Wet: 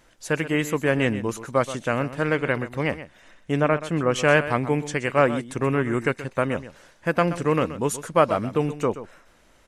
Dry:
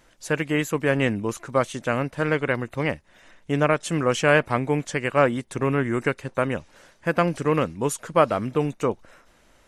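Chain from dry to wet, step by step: 3.61–4.16 s: peaking EQ 7.7 kHz -11.5 dB 2 oct; delay 127 ms -13.5 dB

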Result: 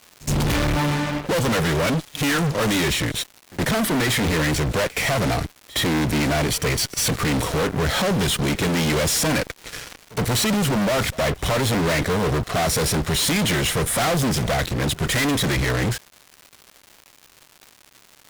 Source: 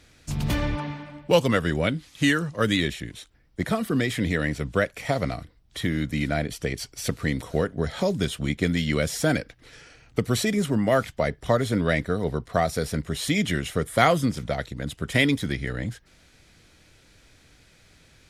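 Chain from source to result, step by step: fuzz box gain 42 dB, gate -46 dBFS; crackle 300 per s -27 dBFS; pre-echo 68 ms -20.5 dB; trim -6 dB

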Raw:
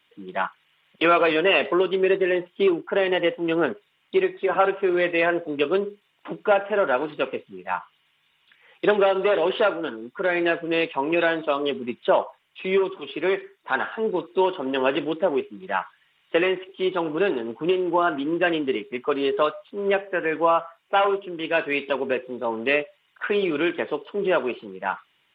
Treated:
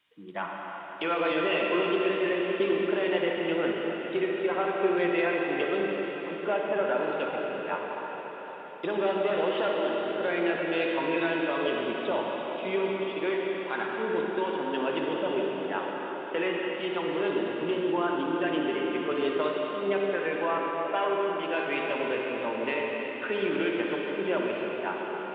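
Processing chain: peak limiter -13 dBFS, peak gain reduction 7.5 dB; reverberation RT60 5.7 s, pre-delay 49 ms, DRR -2 dB; trim -7.5 dB

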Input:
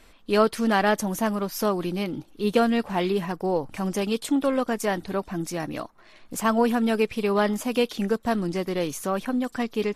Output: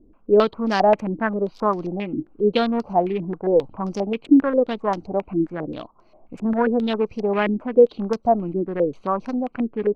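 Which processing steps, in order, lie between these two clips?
local Wiener filter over 25 samples; step-sequenced low-pass 7.5 Hz 320–5500 Hz

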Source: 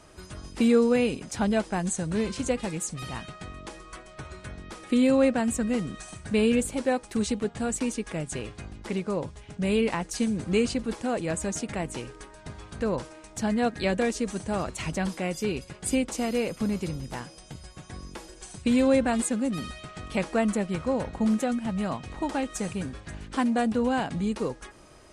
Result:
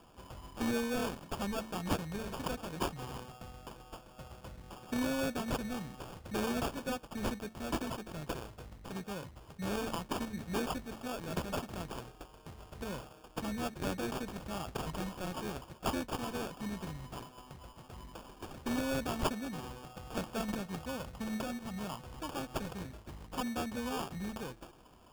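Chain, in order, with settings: amplifier tone stack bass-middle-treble 5-5-5; de-hum 110.7 Hz, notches 3; sample-and-hold 22×; trim +5.5 dB

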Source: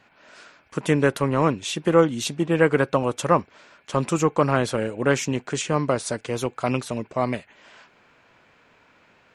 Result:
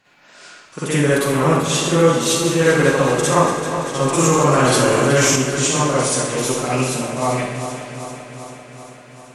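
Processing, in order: backward echo that repeats 195 ms, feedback 81%, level -10.5 dB; peaking EQ 11 kHz +10 dB 2.2 oct; reverberation RT60 0.80 s, pre-delay 43 ms, DRR -9.5 dB; 4.18–5.36 s: level flattener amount 70%; trim -6 dB

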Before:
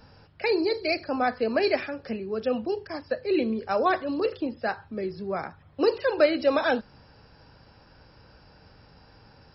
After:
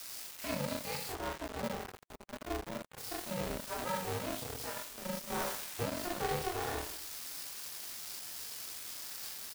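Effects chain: zero-crossing glitches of -19 dBFS; high-pass 200 Hz 24 dB/octave; reverse bouncing-ball echo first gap 40 ms, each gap 1.2×, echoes 5; peak limiter -14.5 dBFS, peak gain reduction 7 dB; 1.12–2.98 s: boxcar filter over 17 samples; 5.30–5.83 s: waveshaping leveller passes 2; chorus voices 6, 0.45 Hz, delay 26 ms, depth 2 ms; small samples zeroed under -30 dBFS; harmonic-percussive split percussive -6 dB; polarity switched at an audio rate 180 Hz; trim -8 dB

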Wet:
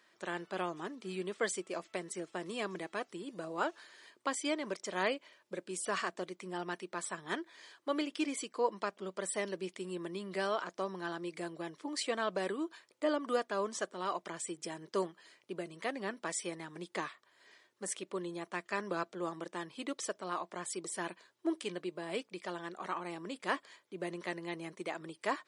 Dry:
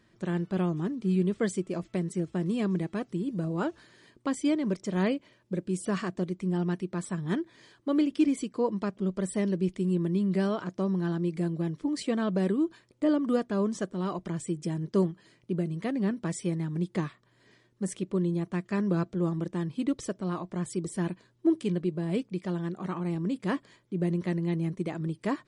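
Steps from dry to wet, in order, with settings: high-pass 650 Hz 12 dB/octave; trim +2 dB

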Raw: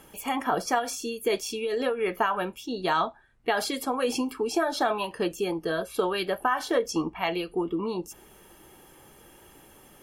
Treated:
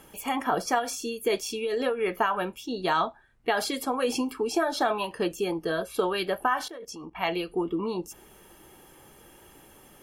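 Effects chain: 6.68–7.15 s: level held to a coarse grid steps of 20 dB

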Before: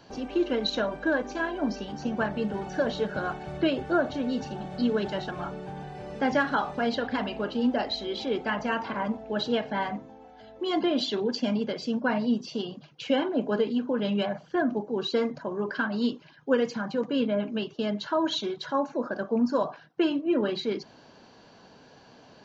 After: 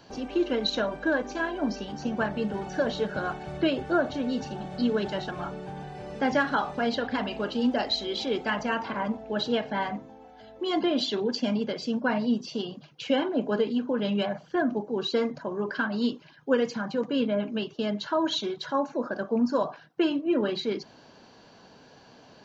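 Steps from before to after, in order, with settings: treble shelf 4 kHz +2.5 dB, from 7.31 s +8.5 dB, from 8.63 s +2 dB

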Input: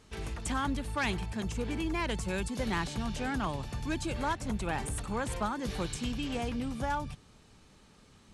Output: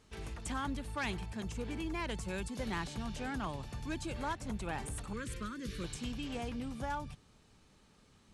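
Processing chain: 5.13–5.84 s: Butterworth band-stop 780 Hz, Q 0.96; trim -5.5 dB

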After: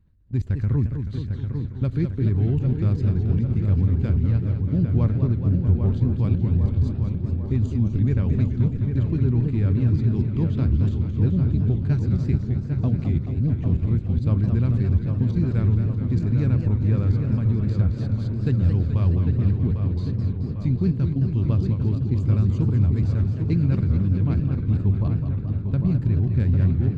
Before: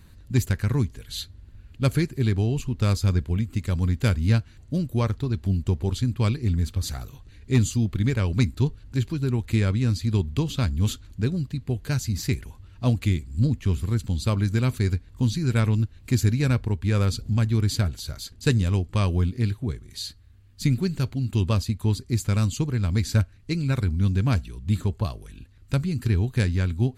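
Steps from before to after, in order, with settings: gate -37 dBFS, range -6 dB; bass shelf 370 Hz +9.5 dB; level held to a coarse grid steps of 20 dB; tape spacing loss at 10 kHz 25 dB; filtered feedback delay 800 ms, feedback 64%, low-pass 2.7 kHz, level -6 dB; modulated delay 214 ms, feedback 70%, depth 198 cents, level -8 dB

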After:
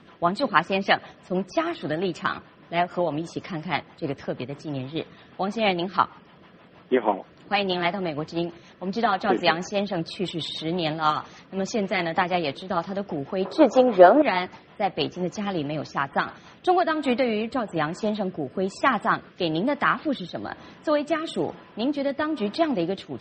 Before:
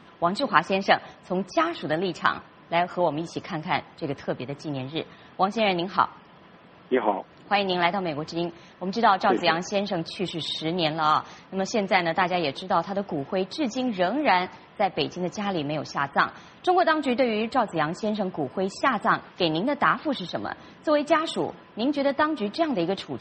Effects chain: 13.45–14.22 s: high-order bell 720 Hz +14 dB 2.4 oct; rotary cabinet horn 6.3 Hz, later 1.1 Hz, at 16.22 s; dynamic bell 5.4 kHz, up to -4 dB, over -51 dBFS, Q 3.3; trim +2 dB

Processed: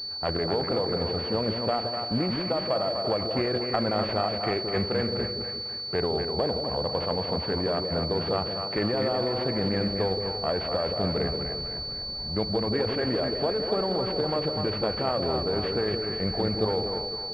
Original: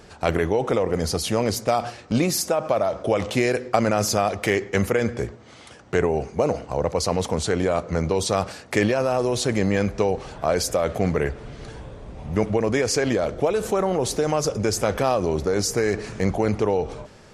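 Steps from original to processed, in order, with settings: self-modulated delay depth 0.18 ms; two-band feedback delay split 610 Hz, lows 173 ms, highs 248 ms, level -4.5 dB; class-D stage that switches slowly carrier 4.5 kHz; trim -6.5 dB

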